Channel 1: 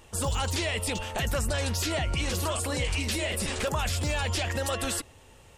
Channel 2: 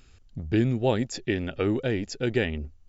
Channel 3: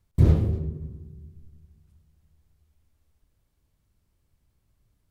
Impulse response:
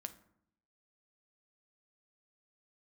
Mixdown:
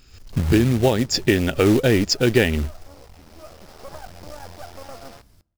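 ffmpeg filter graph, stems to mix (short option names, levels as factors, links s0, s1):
-filter_complex "[0:a]lowpass=f=730:t=q:w=4.4,acrusher=bits=3:dc=4:mix=0:aa=0.000001,adelay=200,volume=0.266,asplit=2[s0][s1];[s1]volume=0.501[s2];[1:a]dynaudnorm=f=110:g=3:m=4.47,volume=1.26,asplit=2[s3][s4];[2:a]acompressor=mode=upward:threshold=0.0398:ratio=2.5,adelay=300,volume=0.355,asplit=2[s5][s6];[s6]volume=0.631[s7];[s4]apad=whole_len=254842[s8];[s0][s8]sidechaincompress=threshold=0.0794:ratio=8:attack=5.1:release=1370[s9];[3:a]atrim=start_sample=2205[s10];[s2][s7]amix=inputs=2:normalize=0[s11];[s11][s10]afir=irnorm=-1:irlink=0[s12];[s9][s3][s5][s12]amix=inputs=4:normalize=0,equalizer=f=5100:t=o:w=0.37:g=8.5,acrusher=bits=4:mode=log:mix=0:aa=0.000001,alimiter=limit=0.473:level=0:latency=1:release=445"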